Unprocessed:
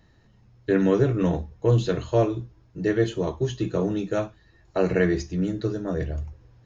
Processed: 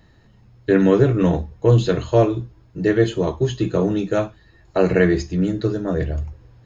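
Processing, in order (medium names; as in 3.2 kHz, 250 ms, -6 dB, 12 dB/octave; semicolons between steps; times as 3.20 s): band-stop 5.8 kHz, Q 8.9; trim +5.5 dB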